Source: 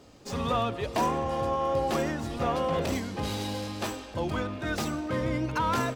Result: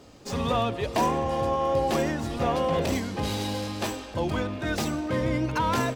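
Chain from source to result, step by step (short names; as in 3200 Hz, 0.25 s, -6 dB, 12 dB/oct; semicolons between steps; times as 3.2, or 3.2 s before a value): dynamic EQ 1300 Hz, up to -5 dB, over -46 dBFS, Q 4.1; gain +3 dB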